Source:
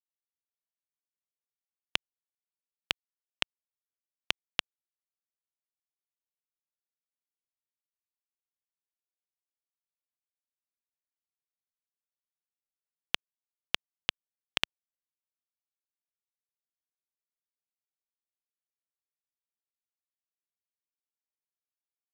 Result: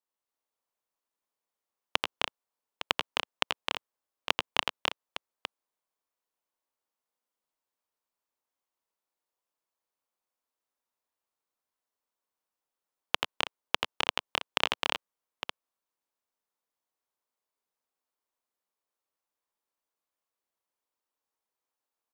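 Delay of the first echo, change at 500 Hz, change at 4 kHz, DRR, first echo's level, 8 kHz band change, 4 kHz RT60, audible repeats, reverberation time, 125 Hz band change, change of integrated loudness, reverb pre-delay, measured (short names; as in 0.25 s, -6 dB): 85 ms, +12.0 dB, +4.0 dB, none, -5.5 dB, +3.5 dB, none, 4, none, +0.5 dB, +3.0 dB, none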